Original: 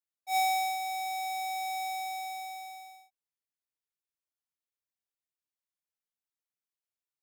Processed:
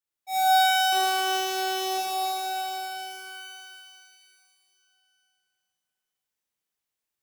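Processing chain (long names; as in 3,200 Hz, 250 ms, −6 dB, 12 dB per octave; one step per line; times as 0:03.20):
0:00.92–0:01.98: sub-harmonics by changed cycles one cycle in 2, muted
reverb with rising layers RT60 3 s, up +12 semitones, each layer −8 dB, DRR −7 dB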